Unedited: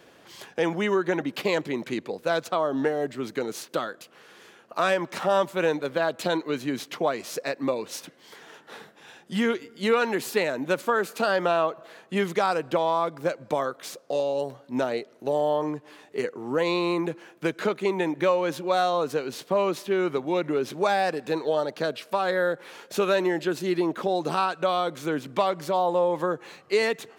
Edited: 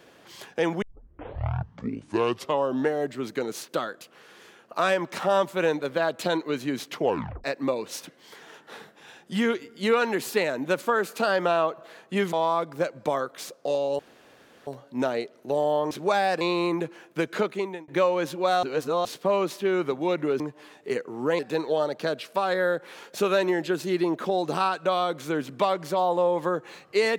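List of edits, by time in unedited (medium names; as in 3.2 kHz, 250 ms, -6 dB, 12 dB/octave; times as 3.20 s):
0.82 s: tape start 2.02 s
6.99 s: tape stop 0.45 s
12.33–12.78 s: delete
14.44 s: insert room tone 0.68 s
15.68–16.67 s: swap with 20.66–21.16 s
17.72–18.14 s: fade out
18.89–19.31 s: reverse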